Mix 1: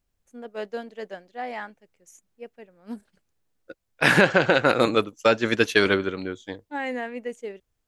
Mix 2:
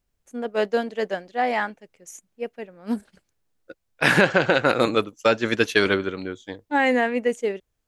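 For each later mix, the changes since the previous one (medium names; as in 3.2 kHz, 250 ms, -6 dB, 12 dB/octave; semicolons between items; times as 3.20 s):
first voice +10.0 dB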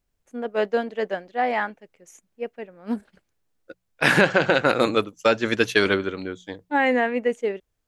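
first voice: add tone controls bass -2 dB, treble -9 dB; second voice: add hum notches 60/120/180 Hz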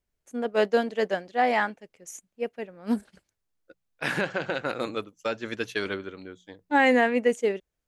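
first voice: add tone controls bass +2 dB, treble +9 dB; second voice -10.5 dB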